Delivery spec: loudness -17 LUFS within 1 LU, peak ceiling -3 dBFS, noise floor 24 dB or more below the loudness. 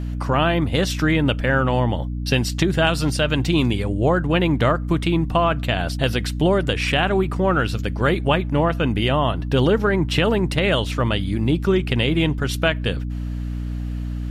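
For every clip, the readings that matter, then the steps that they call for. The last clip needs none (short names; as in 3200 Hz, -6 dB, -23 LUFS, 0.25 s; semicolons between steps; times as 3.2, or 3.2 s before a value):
hum 60 Hz; harmonics up to 300 Hz; hum level -24 dBFS; loudness -20.5 LUFS; peak -3.5 dBFS; loudness target -17.0 LUFS
-> notches 60/120/180/240/300 Hz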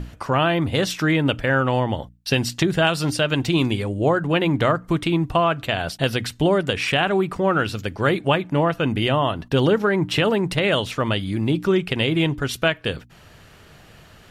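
hum none; loudness -21.0 LUFS; peak -5.0 dBFS; loudness target -17.0 LUFS
-> gain +4 dB; limiter -3 dBFS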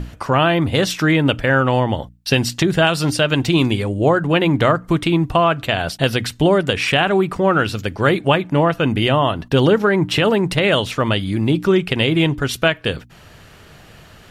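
loudness -17.0 LUFS; peak -3.0 dBFS; noise floor -45 dBFS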